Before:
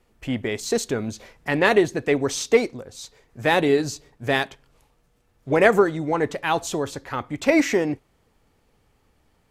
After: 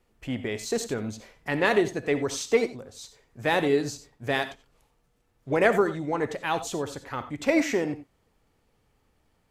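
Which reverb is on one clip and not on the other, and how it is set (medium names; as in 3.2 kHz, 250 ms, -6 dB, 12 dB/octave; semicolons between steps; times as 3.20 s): gated-style reverb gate 110 ms rising, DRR 11 dB; trim -5 dB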